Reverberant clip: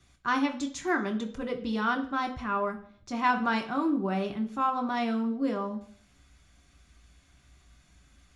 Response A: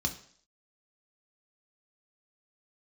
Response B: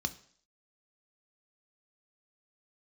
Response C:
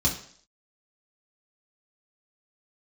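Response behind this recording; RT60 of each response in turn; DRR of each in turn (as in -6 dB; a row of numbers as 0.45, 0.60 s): A; 0.55, 0.55, 0.55 s; 3.0, 8.5, -3.5 dB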